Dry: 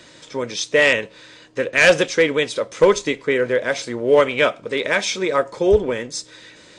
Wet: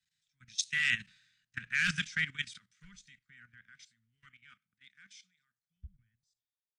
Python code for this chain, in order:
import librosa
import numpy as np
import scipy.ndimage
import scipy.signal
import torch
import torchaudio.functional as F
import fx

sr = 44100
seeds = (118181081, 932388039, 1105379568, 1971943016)

y = fx.doppler_pass(x, sr, speed_mps=12, closest_m=8.1, pass_at_s=1.36)
y = scipy.signal.sosfilt(scipy.signal.ellip(3, 1.0, 40, [190.0, 1500.0], 'bandstop', fs=sr, output='sos'), y)
y = fx.level_steps(y, sr, step_db=14)
y = fx.band_widen(y, sr, depth_pct=100)
y = F.gain(torch.from_numpy(y), -8.0).numpy()